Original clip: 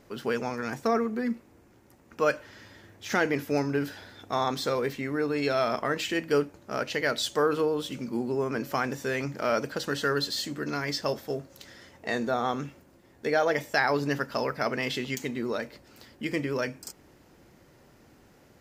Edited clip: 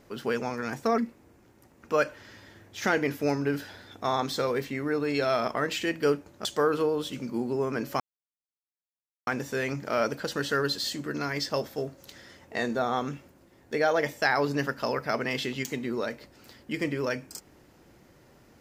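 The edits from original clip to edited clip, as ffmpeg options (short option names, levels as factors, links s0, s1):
-filter_complex "[0:a]asplit=4[s0][s1][s2][s3];[s0]atrim=end=0.982[s4];[s1]atrim=start=1.258:end=6.732[s5];[s2]atrim=start=7.238:end=8.79,asetpts=PTS-STARTPTS,afade=t=out:st=1.548:d=0.004:c=hsin,apad=pad_dur=1.27[s6];[s3]atrim=start=8.79,asetpts=PTS-STARTPTS,afade=t=in:d=0.004:c=hsin[s7];[s4][s5]acrossfade=d=0.004:c1=hsin:c2=hsin[s8];[s6][s7]concat=n=2:v=0:a=1[s9];[s8][s9]acrossfade=d=0.004:c1=hsin:c2=hsin"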